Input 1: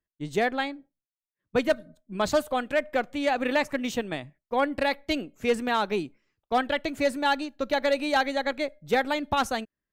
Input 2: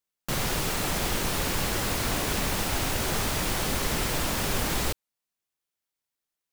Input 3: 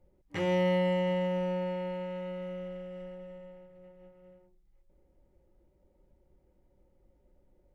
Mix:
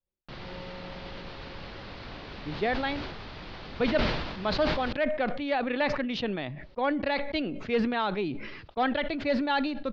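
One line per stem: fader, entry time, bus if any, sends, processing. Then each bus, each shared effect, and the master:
-3.5 dB, 2.25 s, no send, vibrato 0.48 Hz 25 cents
-13.5 dB, 0.00 s, no send, none
-17.0 dB, 0.00 s, no send, upward expansion 1.5:1, over -50 dBFS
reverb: none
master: steep low-pass 4.7 kHz 48 dB/octave; decay stretcher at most 43 dB/s

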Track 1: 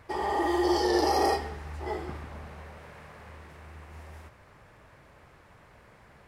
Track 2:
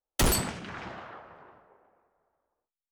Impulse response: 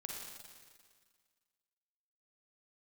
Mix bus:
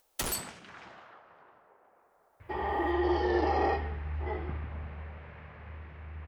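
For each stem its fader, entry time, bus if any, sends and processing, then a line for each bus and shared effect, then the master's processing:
+2.5 dB, 2.40 s, no send, four-pole ladder low-pass 3.3 kHz, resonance 30%; peaking EQ 87 Hz +9.5 dB 1.8 oct
-7.5 dB, 0.00 s, no send, bass shelf 360 Hz -8.5 dB; upward compressor, threshold -43 dBFS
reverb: none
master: treble shelf 8.8 kHz +4 dB

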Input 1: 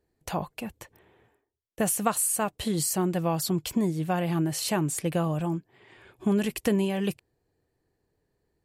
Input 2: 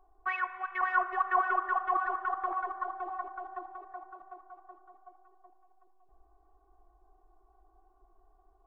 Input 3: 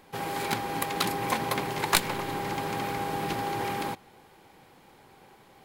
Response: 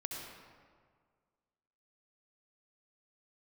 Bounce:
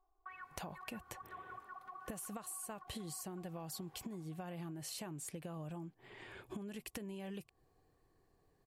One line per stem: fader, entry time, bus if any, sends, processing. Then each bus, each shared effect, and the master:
+0.5 dB, 0.30 s, no bus, no send, compression 6:1, threshold -36 dBFS, peak gain reduction 16 dB
-14.5 dB, 0.00 s, bus A, no send, peaking EQ 1.2 kHz +5 dB 0.46 oct
-19.5 dB, 0.30 s, bus A, no send, compression 4:1, threshold -40 dBFS, peak gain reduction 19.5 dB; random-step tremolo
bus A: 0.0 dB, compression 6:1, threshold -48 dBFS, peak gain reduction 14.5 dB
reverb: none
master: compression 4:1, threshold -44 dBFS, peak gain reduction 11 dB

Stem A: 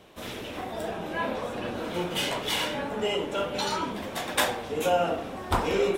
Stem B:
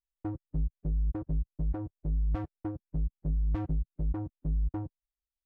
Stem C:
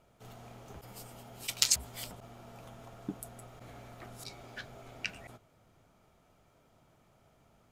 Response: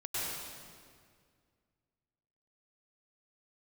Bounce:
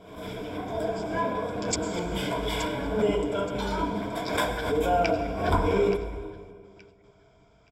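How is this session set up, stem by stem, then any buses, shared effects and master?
-5.5 dB, 0.00 s, send -13 dB, no echo send, tilt shelf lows +5.5 dB, about 1.4 kHz
-10.0 dB, 1.50 s, no send, no echo send, none
+2.5 dB, 0.00 s, send -15 dB, echo send -11 dB, steep low-pass 7.2 kHz 48 dB/octave; trance gate "x.xx.xxxxx...xx." 113 bpm -24 dB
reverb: on, RT60 2.0 s, pre-delay 93 ms
echo: feedback delay 874 ms, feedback 26%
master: rippled EQ curve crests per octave 1.7, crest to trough 12 dB; swell ahead of each attack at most 69 dB/s

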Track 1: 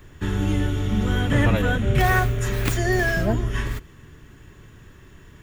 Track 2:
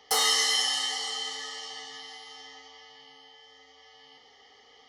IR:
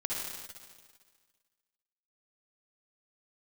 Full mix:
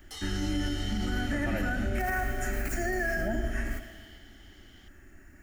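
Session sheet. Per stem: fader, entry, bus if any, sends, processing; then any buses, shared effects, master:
-5.5 dB, 0.00 s, send -10.5 dB, static phaser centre 690 Hz, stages 8
2.99 s -20 dB -> 3.29 s -12.5 dB, 0.00 s, send -19 dB, frequency weighting D; peak limiter -12.5 dBFS, peak gain reduction 9.5 dB; peaking EQ 4.6 kHz -6 dB 0.28 oct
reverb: on, RT60 1.7 s, pre-delay 50 ms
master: peak limiter -21 dBFS, peak gain reduction 11 dB

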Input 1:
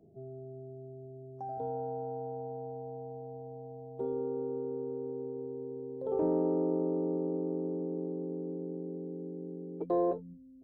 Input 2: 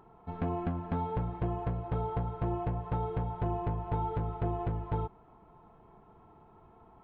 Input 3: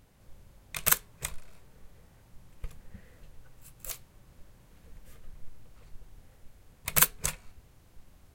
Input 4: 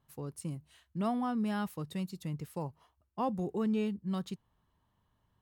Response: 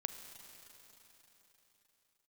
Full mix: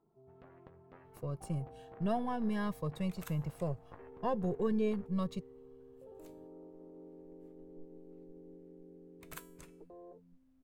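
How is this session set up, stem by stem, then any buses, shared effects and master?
-15.0 dB, 0.00 s, no send, high-pass 120 Hz; peak limiter -31 dBFS, peak gain reduction 11 dB
-17.0 dB, 0.00 s, no send, Chebyshev shaper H 3 -6 dB, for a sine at -21 dBFS
-10.5 dB, 2.35 s, no send, feedback comb 330 Hz, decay 0.56 s, mix 70%
+3.0 dB, 1.05 s, no send, partial rectifier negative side -3 dB; comb 1.8 ms; Shepard-style phaser rising 0.47 Hz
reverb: none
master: treble shelf 3.2 kHz -10 dB

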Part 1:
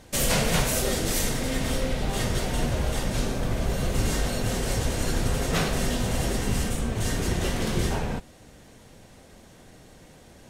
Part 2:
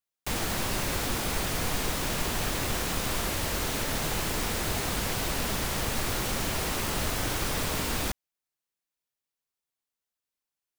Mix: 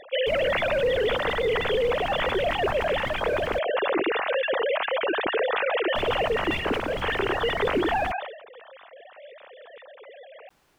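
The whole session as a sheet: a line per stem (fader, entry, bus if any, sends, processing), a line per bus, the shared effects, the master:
+1.5 dB, 0.00 s, no send, formants replaced by sine waves; peak limiter -19 dBFS, peak gain reduction 8 dB
-4.0 dB, 0.00 s, muted 3.59–5.95 s, no send, low-pass 1 kHz 6 dB/octave; de-hum 429 Hz, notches 10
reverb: none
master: decay stretcher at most 70 dB/s

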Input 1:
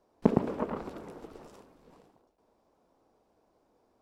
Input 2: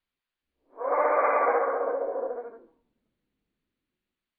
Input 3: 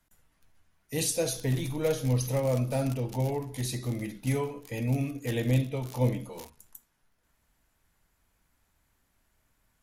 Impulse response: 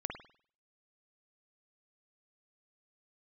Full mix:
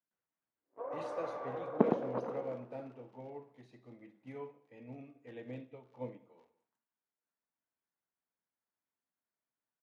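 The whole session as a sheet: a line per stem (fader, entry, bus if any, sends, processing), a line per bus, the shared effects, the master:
-1.0 dB, 1.55 s, no send, no echo send, none
-6.5 dB, 0.00 s, no send, no echo send, waveshaping leveller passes 2; compression 5:1, threshold -30 dBFS, peak gain reduction 12.5 dB; tilt EQ -3.5 dB/octave
-9.5 dB, 0.00 s, send -7 dB, echo send -15.5 dB, none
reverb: on, pre-delay 49 ms
echo: delay 188 ms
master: band-pass 240–2000 Hz; upward expansion 1.5:1, over -51 dBFS

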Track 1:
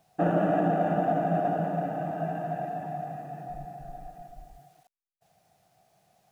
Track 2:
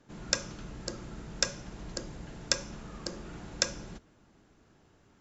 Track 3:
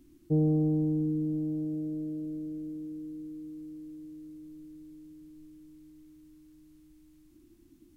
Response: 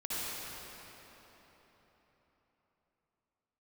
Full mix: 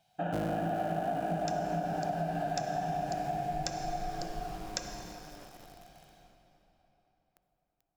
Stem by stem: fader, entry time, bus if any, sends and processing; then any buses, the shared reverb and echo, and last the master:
-11.5 dB, 0.00 s, send -7 dB, peaking EQ 3.3 kHz +11 dB 1.2 oct; comb 1.3 ms, depth 53%; level rider gain up to 10 dB
-6.5 dB, 1.15 s, send -12.5 dB, none
-2.0 dB, 0.00 s, send -18 dB, cycle switcher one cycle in 3, muted; bit crusher 8-bit; vibrato 0.3 Hz 95 cents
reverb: on, RT60 4.2 s, pre-delay 53 ms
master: compression 6:1, threshold -30 dBFS, peak gain reduction 12 dB

